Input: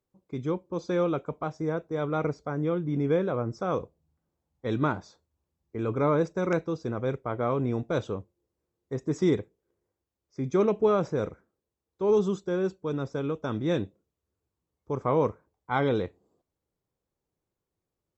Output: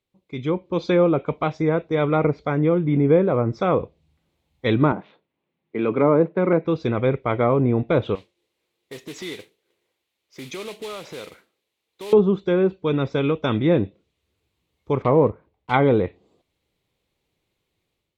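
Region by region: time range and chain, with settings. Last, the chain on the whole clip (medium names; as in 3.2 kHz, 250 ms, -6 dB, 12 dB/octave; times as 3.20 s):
4.92–6.65 s: median filter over 9 samples + high-pass 160 Hz 24 dB/octave + distance through air 300 m
8.15–12.13 s: high-pass 530 Hz 6 dB/octave + compression 3:1, threshold -45 dBFS + modulation noise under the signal 12 dB
15.02–15.74 s: block-companded coder 5-bit + low-pass 1.1 kHz 6 dB/octave
whole clip: low-pass that closes with the level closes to 1.1 kHz, closed at -23 dBFS; high-order bell 2.9 kHz +11 dB 1.3 oct; level rider gain up to 9 dB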